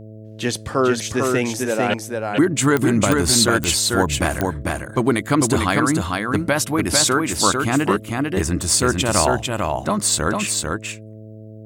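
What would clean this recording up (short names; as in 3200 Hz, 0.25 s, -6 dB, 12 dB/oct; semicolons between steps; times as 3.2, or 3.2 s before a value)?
de-click; de-hum 108.6 Hz, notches 6; inverse comb 0.447 s -3.5 dB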